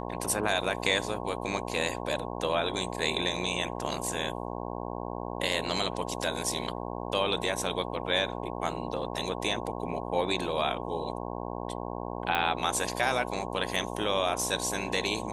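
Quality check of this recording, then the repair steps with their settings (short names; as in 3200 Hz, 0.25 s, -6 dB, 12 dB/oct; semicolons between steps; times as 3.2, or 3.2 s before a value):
buzz 60 Hz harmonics 18 -36 dBFS
12.35 pop -15 dBFS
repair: de-click; de-hum 60 Hz, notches 18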